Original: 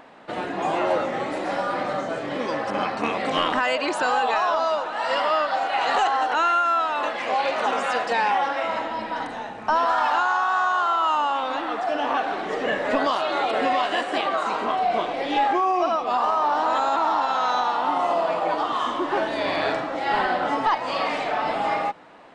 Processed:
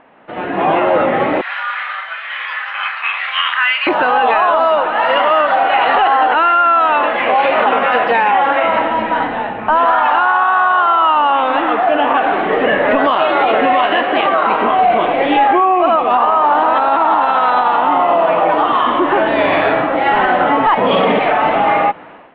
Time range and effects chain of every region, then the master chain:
1.41–3.87 s: high-pass 1.4 kHz 24 dB/octave + doubling 30 ms -6.5 dB
20.77–21.19 s: small resonant body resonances 200/420/3300 Hz, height 17 dB + loudspeaker Doppler distortion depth 0.1 ms
whole clip: steep low-pass 3.1 kHz 36 dB/octave; peak limiter -17 dBFS; level rider gain up to 13.5 dB

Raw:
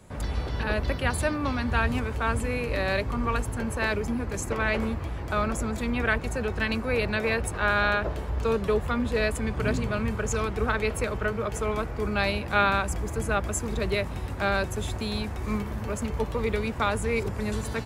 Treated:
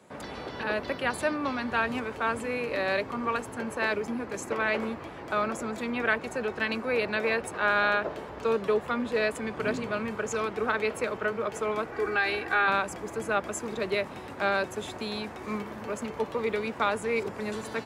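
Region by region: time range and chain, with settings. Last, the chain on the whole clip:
11.92–12.68 s: peaking EQ 1.7 kHz +9.5 dB 0.4 oct + comb 2.6 ms, depth 69% + compression 3:1, threshold -21 dBFS
whole clip: high-pass 250 Hz 12 dB/octave; treble shelf 6.4 kHz -9 dB

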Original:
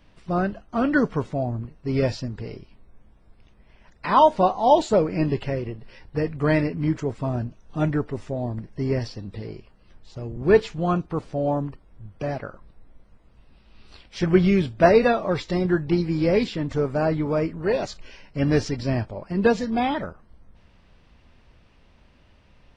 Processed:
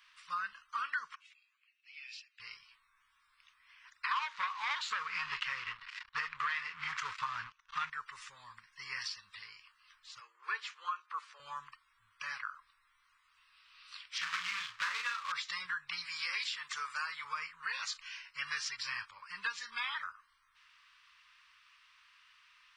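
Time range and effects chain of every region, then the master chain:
1.15–2.40 s: treble shelf 3.5 kHz -6.5 dB + compression 3:1, threshold -27 dBFS + ladder high-pass 2.3 kHz, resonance 65%
4.11–7.90 s: waveshaping leveller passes 3 + distance through air 130 m
10.20–11.40 s: Chebyshev high-pass 330 Hz, order 6 + tilt EQ -2 dB/octave
14.18–15.32 s: companded quantiser 4-bit + distance through air 140 m + doubling 34 ms -5 dB
16.05–17.25 s: high-pass 330 Hz 6 dB/octave + treble shelf 3.9 kHz +6.5 dB
whole clip: elliptic high-pass 1.1 kHz, stop band 40 dB; compression 6:1, threshold -36 dBFS; trim +2 dB

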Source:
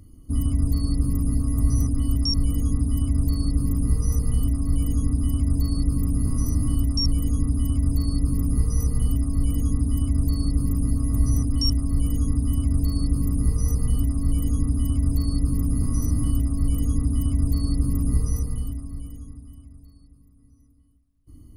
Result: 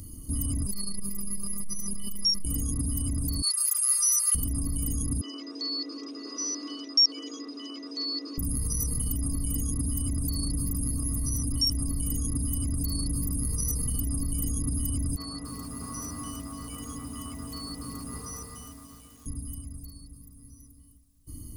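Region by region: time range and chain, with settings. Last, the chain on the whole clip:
0.66–2.45 s: FFT filter 450 Hz 0 dB, 2.3 kHz +9 dB, 8.1 kHz +4 dB + robot voice 199 Hz + transformer saturation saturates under 72 Hz
3.42–4.35 s: steep high-pass 1.2 kHz 48 dB/octave + treble shelf 11 kHz -7.5 dB + comb 5.9 ms, depth 89%
5.21–8.38 s: Chebyshev band-pass 320–5700 Hz, order 5 + peaking EQ 810 Hz -8 dB 1.3 oct
15.16–19.26 s: band-pass filter 1.3 kHz, Q 1.1 + bit-crushed delay 289 ms, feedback 35%, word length 10-bit, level -10 dB
whole clip: tone controls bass +9 dB, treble +14 dB; peak limiter -19.5 dBFS; bass shelf 230 Hz -11 dB; trim +5 dB

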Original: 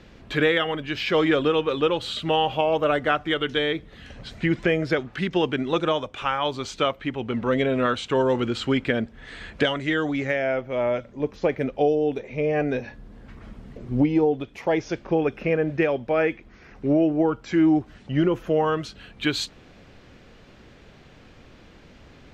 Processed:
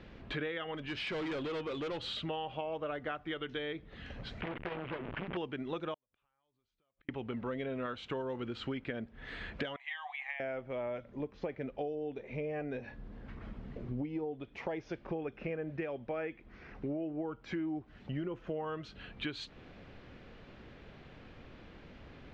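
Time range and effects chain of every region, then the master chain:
0.74–2.22 s: treble shelf 4.2 kHz +7 dB + overload inside the chain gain 24 dB
4.41–5.37 s: one-bit delta coder 16 kbps, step -20.5 dBFS + transformer saturation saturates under 1.4 kHz
5.94–7.09 s: bass shelf 79 Hz +11 dB + compression 8:1, threshold -32 dBFS + inverted gate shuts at -31 dBFS, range -42 dB
9.76–10.40 s: Chebyshev high-pass 740 Hz, order 6 + treble shelf 6.6 kHz -7 dB + static phaser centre 1.4 kHz, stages 6
whole clip: low-pass 3.6 kHz 12 dB/octave; compression 4:1, threshold -34 dBFS; trim -3.5 dB

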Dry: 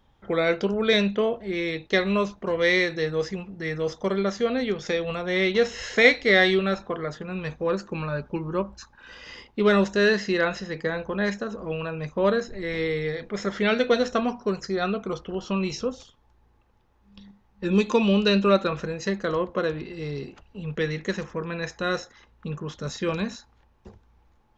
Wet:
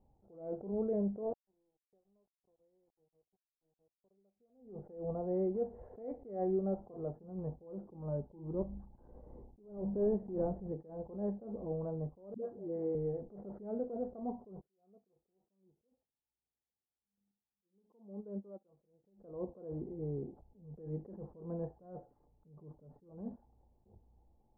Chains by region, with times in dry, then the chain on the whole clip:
1.23–4.11 s: peaking EQ 280 Hz -3 dB 2.9 oct + small samples zeroed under -28.5 dBFS
8.54–10.72 s: block-companded coder 3-bit + tilt EQ -2.5 dB/octave + hum notches 50/100/150/200/250/300 Hz
12.34–12.95 s: band-pass 220–5300 Hz + phase dispersion highs, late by 103 ms, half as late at 450 Hz
14.61–19.04 s: high-pass 160 Hz 6 dB/octave + upward expansion 2.5:1, over -34 dBFS
21.80–23.11 s: companding laws mixed up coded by mu + comb 6.8 ms, depth 48% + upward expansion, over -43 dBFS
whole clip: Chebyshev low-pass 800 Hz, order 4; compression 2.5:1, threshold -25 dBFS; attacks held to a fixed rise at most 110 dB/s; trim -6 dB

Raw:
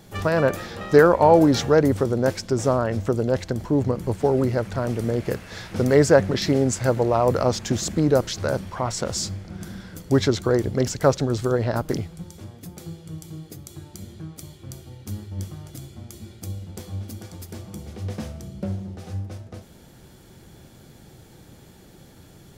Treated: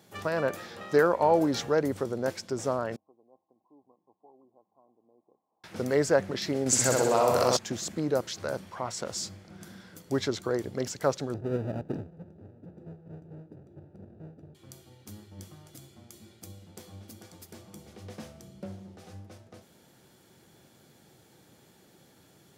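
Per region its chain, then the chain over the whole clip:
2.96–5.64 s: rippled Chebyshev low-pass 1.1 kHz, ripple 9 dB + differentiator
6.66–7.57 s: treble shelf 2.2 kHz +10.5 dB + flutter echo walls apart 10.9 m, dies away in 1.1 s + level flattener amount 50%
11.34–14.55 s: square wave that keeps the level + boxcar filter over 41 samples + tape noise reduction on one side only decoder only
whole clip: high-pass 100 Hz; bass shelf 220 Hz -7.5 dB; trim -7 dB

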